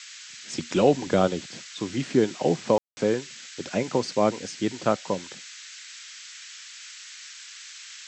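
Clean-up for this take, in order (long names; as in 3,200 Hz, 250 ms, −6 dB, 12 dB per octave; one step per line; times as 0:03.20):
ambience match 0:02.78–0:02.97
noise reduction from a noise print 26 dB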